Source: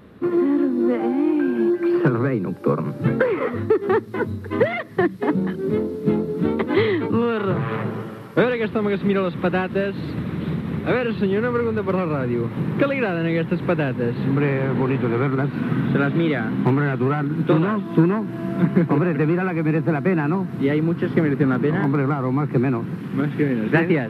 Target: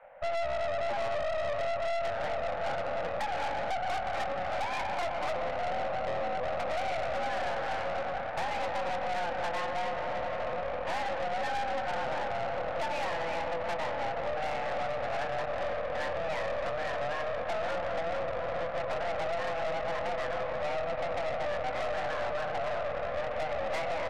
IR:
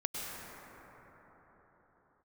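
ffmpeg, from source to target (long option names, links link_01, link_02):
-filter_complex "[0:a]asplit=2[link_01][link_02];[link_02]adelay=23,volume=-7dB[link_03];[link_01][link_03]amix=inputs=2:normalize=0,asplit=2[link_04][link_05];[1:a]atrim=start_sample=2205,lowshelf=frequency=210:gain=9.5[link_06];[link_05][link_06]afir=irnorm=-1:irlink=0,volume=-6.5dB[link_07];[link_04][link_07]amix=inputs=2:normalize=0,acompressor=threshold=-14dB:ratio=8,highpass=frequency=210:width_type=q:width=0.5412,highpass=frequency=210:width_type=q:width=1.307,lowpass=frequency=2300:width_type=q:width=0.5176,lowpass=frequency=2300:width_type=q:width=0.7071,lowpass=frequency=2300:width_type=q:width=1.932,afreqshift=330,aeval=exprs='(tanh(17.8*val(0)+0.75)-tanh(0.75))/17.8':channel_layout=same,volume=-5dB"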